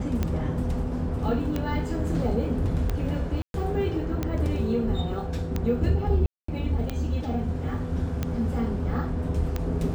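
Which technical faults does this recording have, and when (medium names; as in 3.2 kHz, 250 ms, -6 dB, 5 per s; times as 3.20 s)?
tick 45 rpm -14 dBFS
3.42–3.54 s: dropout 122 ms
6.26–6.48 s: dropout 224 ms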